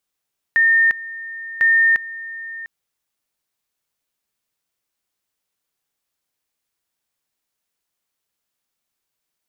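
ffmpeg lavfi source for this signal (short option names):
-f lavfi -i "aevalsrc='pow(10,(-11-17.5*gte(mod(t,1.05),0.35))/20)*sin(2*PI*1820*t)':d=2.1:s=44100"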